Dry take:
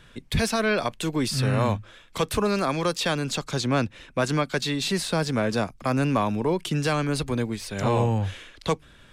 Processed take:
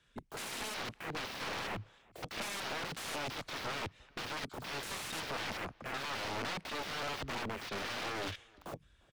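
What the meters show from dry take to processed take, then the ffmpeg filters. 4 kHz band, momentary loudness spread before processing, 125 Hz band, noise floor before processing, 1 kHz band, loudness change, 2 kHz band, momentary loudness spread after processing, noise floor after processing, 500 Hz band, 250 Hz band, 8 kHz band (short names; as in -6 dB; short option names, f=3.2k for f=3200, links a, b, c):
-9.0 dB, 6 LU, -22.5 dB, -52 dBFS, -12.0 dB, -14.0 dB, -8.5 dB, 7 LU, -66 dBFS, -18.0 dB, -21.0 dB, -11.5 dB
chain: -filter_complex "[0:a]equalizer=f=7.1k:t=o:w=2:g=11.5,acrossover=split=140|590|6200[a][b][c][d];[a]crystalizer=i=7:c=0[e];[e][b][c][d]amix=inputs=4:normalize=0,aeval=exprs='(mod(20*val(0)+1,2)-1)/20':c=same,afwtdn=0.0141,highpass=45,bass=f=250:g=-3,treble=f=4k:g=-7,asplit=2[f][g];[g]adelay=349.9,volume=-28dB,highshelf=f=4k:g=-7.87[h];[f][h]amix=inputs=2:normalize=0,aeval=exprs='clip(val(0),-1,0.0141)':c=same,volume=-3dB"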